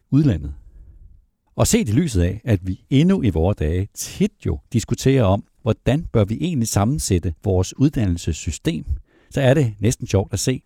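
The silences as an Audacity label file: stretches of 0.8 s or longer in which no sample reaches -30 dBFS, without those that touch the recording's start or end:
0.530000	1.580000	silence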